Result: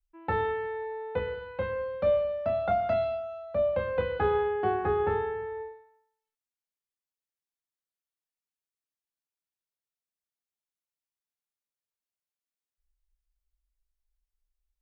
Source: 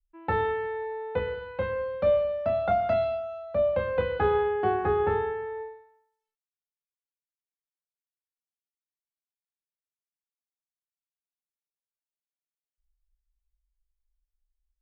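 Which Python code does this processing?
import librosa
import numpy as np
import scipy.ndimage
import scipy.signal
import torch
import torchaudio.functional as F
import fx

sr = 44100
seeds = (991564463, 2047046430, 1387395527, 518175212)

y = fx.low_shelf(x, sr, hz=140.0, db=8.0, at=(5.32, 5.72))
y = y * librosa.db_to_amplitude(-2.0)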